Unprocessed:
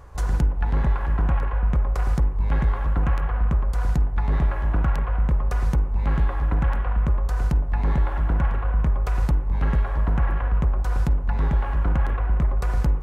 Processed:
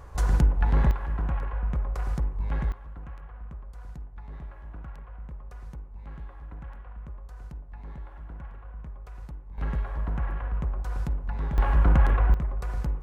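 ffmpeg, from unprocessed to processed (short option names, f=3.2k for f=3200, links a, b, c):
-af "asetnsamples=n=441:p=0,asendcmd='0.91 volume volume -7dB;2.72 volume volume -19.5dB;9.58 volume volume -8dB;11.58 volume volume 2dB;12.34 volume volume -8dB',volume=0dB"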